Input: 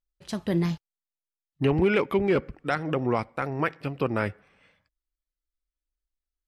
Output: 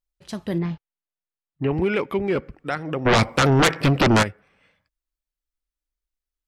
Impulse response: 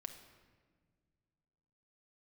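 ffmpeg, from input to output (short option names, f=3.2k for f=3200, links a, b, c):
-filter_complex "[0:a]asettb=1/sr,asplit=3[a][b][c];[a]atrim=end=0.584[d];[b]atrim=start=0.58:end=1.71,asetpts=PTS-STARTPTS,afade=t=in:d=0.004:c=qsin,afade=t=out:st=1.126:d=0.004:c=qsin,lowpass=2.5k[e];[c]atrim=start=1.706[f];[d][e]acrossfade=d=0.004:c1=hsin:c2=qsin[g];[g][f]acrossfade=d=0.004:c1=qsin:c2=hsin,asplit=3[h][i][j];[h]afade=t=out:st=3.05:d=0.02[k];[i]aeval=exprs='0.251*sin(PI/2*5.01*val(0)/0.251)':c=same,afade=t=in:st=3.05:d=0.02,afade=t=out:st=4.22:d=0.02[l];[j]afade=t=in:st=4.22:d=0.02[m];[k][l][m]amix=inputs=3:normalize=0"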